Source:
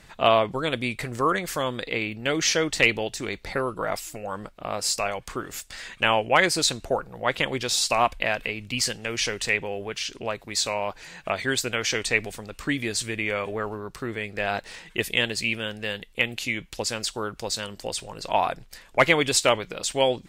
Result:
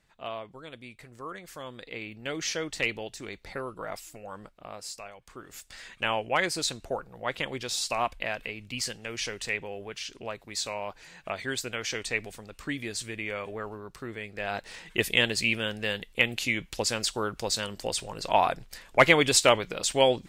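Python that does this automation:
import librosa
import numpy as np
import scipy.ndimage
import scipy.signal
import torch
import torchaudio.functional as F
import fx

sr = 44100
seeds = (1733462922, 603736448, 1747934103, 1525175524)

y = fx.gain(x, sr, db=fx.line((1.15, -18.0), (2.23, -9.0), (4.49, -9.0), (5.16, -18.0), (5.68, -7.0), (14.38, -7.0), (14.99, 0.0)))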